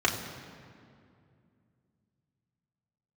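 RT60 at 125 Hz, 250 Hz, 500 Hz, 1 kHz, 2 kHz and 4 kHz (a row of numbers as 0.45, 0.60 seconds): 3.6, 3.3, 2.6, 2.2, 2.0, 1.5 seconds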